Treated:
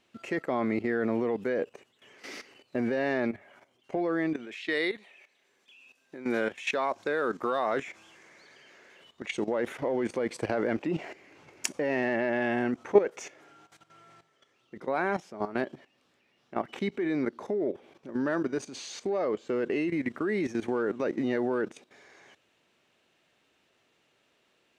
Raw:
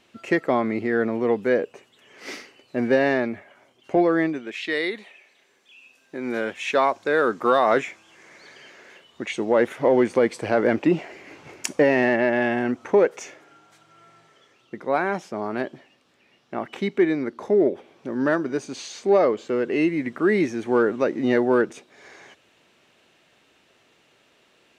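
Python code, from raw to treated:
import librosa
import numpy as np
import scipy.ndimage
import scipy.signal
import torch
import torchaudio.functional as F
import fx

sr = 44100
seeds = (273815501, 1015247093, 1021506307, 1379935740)

y = fx.level_steps(x, sr, step_db=14)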